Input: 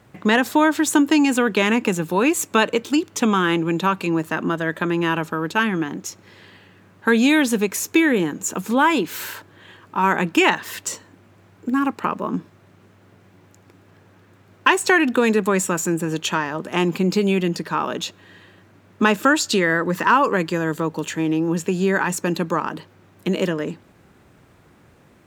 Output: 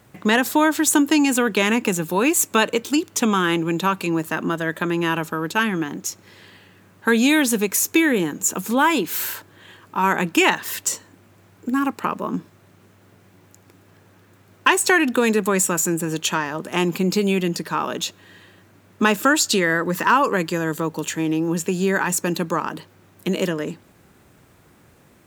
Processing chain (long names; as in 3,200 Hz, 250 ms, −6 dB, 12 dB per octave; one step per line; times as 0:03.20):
high-shelf EQ 6,600 Hz +10.5 dB
level −1 dB